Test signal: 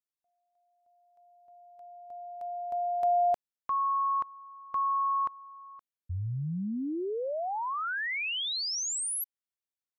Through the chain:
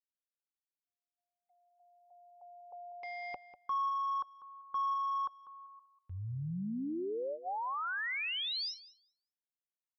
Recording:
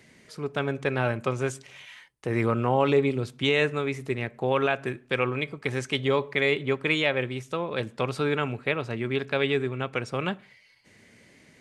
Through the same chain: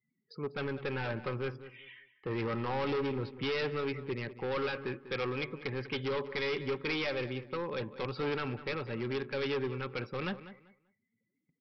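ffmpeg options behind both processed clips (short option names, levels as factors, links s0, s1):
-filter_complex "[0:a]afftdn=nr=31:nf=-46,agate=range=0.178:threshold=0.00158:ratio=16:release=231:detection=rms,equalizer=f=64:w=2.3:g=-15,aresample=11025,asoftclip=type=hard:threshold=0.0501,aresample=44100,asuperstop=centerf=660:order=8:qfactor=5.4,asplit=2[s0][s1];[s1]adelay=195,lowpass=f=2900:p=1,volume=0.211,asplit=2[s2][s3];[s3]adelay=195,lowpass=f=2900:p=1,volume=0.24,asplit=2[s4][s5];[s5]adelay=195,lowpass=f=2900:p=1,volume=0.24[s6];[s2][s4][s6]amix=inputs=3:normalize=0[s7];[s0][s7]amix=inputs=2:normalize=0,volume=0.631"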